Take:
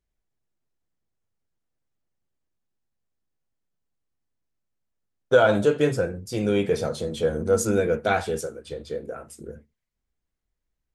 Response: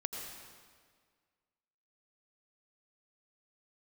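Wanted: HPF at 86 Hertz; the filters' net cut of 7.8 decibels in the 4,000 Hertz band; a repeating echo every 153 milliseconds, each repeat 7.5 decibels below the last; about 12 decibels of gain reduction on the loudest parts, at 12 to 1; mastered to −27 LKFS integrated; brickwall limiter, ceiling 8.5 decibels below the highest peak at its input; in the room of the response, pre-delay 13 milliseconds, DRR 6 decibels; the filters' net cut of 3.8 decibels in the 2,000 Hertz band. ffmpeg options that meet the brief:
-filter_complex "[0:a]highpass=86,equalizer=frequency=2000:width_type=o:gain=-4.5,equalizer=frequency=4000:width_type=o:gain=-8.5,acompressor=threshold=-24dB:ratio=12,alimiter=limit=-22.5dB:level=0:latency=1,aecho=1:1:153|306|459|612|765:0.422|0.177|0.0744|0.0312|0.0131,asplit=2[link_01][link_02];[1:a]atrim=start_sample=2205,adelay=13[link_03];[link_02][link_03]afir=irnorm=-1:irlink=0,volume=-7dB[link_04];[link_01][link_04]amix=inputs=2:normalize=0,volume=4.5dB"

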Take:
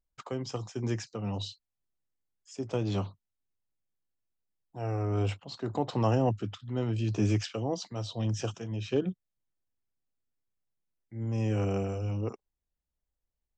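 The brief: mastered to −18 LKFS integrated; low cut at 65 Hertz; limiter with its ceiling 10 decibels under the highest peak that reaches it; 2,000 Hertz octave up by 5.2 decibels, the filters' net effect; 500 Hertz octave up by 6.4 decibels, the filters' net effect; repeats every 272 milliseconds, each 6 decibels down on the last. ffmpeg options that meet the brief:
ffmpeg -i in.wav -af "highpass=65,equalizer=frequency=500:width_type=o:gain=7.5,equalizer=frequency=2000:width_type=o:gain=6.5,alimiter=limit=-20.5dB:level=0:latency=1,aecho=1:1:272|544|816|1088|1360|1632:0.501|0.251|0.125|0.0626|0.0313|0.0157,volume=13.5dB" out.wav

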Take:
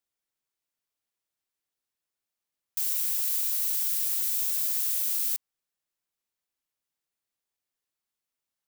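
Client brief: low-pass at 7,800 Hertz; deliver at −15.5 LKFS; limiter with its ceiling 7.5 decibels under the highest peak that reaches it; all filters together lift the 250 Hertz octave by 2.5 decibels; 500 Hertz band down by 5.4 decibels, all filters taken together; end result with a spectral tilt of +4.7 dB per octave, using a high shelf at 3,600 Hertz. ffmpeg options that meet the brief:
ffmpeg -i in.wav -af "lowpass=7800,equalizer=frequency=250:width_type=o:gain=6.5,equalizer=frequency=500:width_type=o:gain=-9,highshelf=frequency=3600:gain=5,volume=21.5dB,alimiter=limit=-8.5dB:level=0:latency=1" out.wav

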